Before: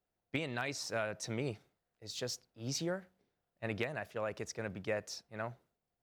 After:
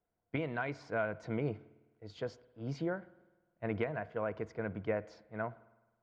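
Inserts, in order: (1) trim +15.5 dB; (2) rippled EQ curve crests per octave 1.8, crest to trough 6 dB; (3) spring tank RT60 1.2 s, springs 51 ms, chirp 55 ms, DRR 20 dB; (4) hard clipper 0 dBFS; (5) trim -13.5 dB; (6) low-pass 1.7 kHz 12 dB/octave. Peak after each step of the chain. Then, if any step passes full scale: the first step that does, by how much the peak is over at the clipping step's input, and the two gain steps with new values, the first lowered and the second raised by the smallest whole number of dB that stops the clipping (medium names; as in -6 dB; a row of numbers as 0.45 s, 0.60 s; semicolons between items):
-5.5 dBFS, -5.0 dBFS, -5.0 dBFS, -5.0 dBFS, -18.5 dBFS, -21.0 dBFS; nothing clips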